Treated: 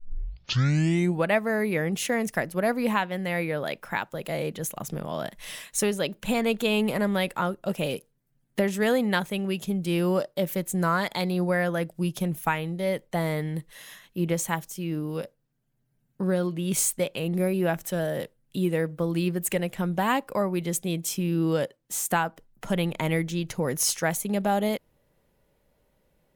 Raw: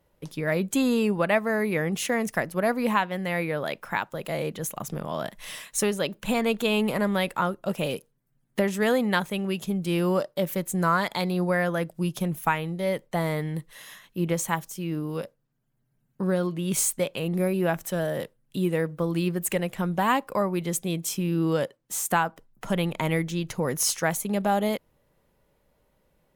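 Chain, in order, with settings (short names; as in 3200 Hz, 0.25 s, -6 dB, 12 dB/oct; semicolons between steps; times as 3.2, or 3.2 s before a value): tape start at the beginning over 1.26 s; bell 1100 Hz -3.5 dB 0.66 oct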